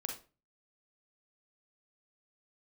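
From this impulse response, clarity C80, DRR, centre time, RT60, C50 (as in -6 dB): 13.0 dB, 1.5 dB, 24 ms, 0.35 s, 6.0 dB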